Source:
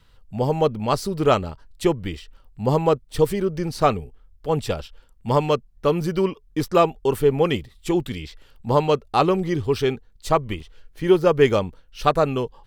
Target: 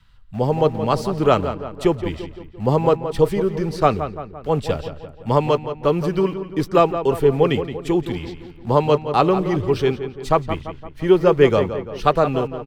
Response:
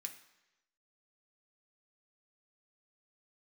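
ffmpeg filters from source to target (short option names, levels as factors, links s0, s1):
-filter_complex "[0:a]acrossover=split=270|760|2100[s0][s1][s2][s3];[s1]aeval=exprs='val(0)*gte(abs(val(0)),0.0075)':c=same[s4];[s0][s4][s2][s3]amix=inputs=4:normalize=0,highshelf=f=5000:g=-8.5,asplit=2[s5][s6];[s6]adelay=171,lowpass=f=2900:p=1,volume=0.316,asplit=2[s7][s8];[s8]adelay=171,lowpass=f=2900:p=1,volume=0.53,asplit=2[s9][s10];[s10]adelay=171,lowpass=f=2900:p=1,volume=0.53,asplit=2[s11][s12];[s12]adelay=171,lowpass=f=2900:p=1,volume=0.53,asplit=2[s13][s14];[s14]adelay=171,lowpass=f=2900:p=1,volume=0.53,asplit=2[s15][s16];[s16]adelay=171,lowpass=f=2900:p=1,volume=0.53[s17];[s5][s7][s9][s11][s13][s15][s17]amix=inputs=7:normalize=0,volume=1.26"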